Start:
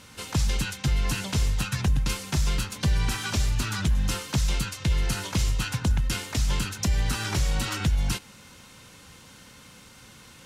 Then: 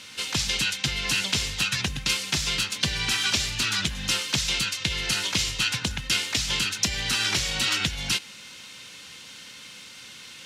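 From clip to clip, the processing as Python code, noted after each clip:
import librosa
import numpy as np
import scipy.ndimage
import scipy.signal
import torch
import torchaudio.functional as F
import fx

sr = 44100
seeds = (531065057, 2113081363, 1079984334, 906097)

y = fx.weighting(x, sr, curve='D')
y = y * 10.0 ** (-1.0 / 20.0)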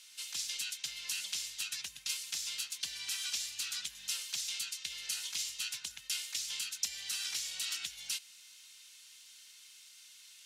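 y = librosa.effects.preemphasis(x, coef=0.97, zi=[0.0])
y = y * 10.0 ** (-7.5 / 20.0)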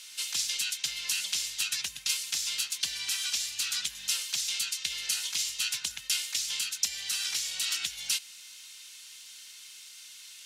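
y = fx.rider(x, sr, range_db=10, speed_s=0.5)
y = y * 10.0 ** (7.0 / 20.0)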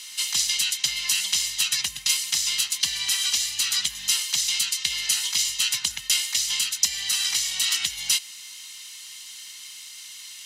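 y = x + 0.49 * np.pad(x, (int(1.0 * sr / 1000.0), 0))[:len(x)]
y = y * 10.0 ** (6.5 / 20.0)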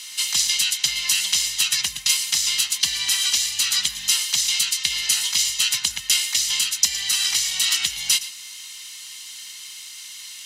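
y = x + 10.0 ** (-15.5 / 20.0) * np.pad(x, (int(115 * sr / 1000.0), 0))[:len(x)]
y = y * 10.0 ** (3.0 / 20.0)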